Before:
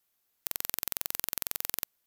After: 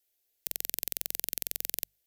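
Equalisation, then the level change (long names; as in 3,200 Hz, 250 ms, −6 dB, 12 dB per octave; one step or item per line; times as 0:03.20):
mains-hum notches 50/100/150/200 Hz
phaser with its sweep stopped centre 460 Hz, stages 4
0.0 dB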